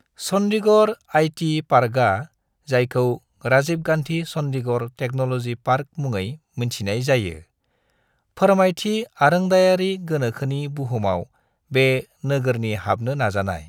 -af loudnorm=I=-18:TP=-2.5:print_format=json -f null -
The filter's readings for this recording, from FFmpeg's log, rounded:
"input_i" : "-21.4",
"input_tp" : "-3.0",
"input_lra" : "4.6",
"input_thresh" : "-31.8",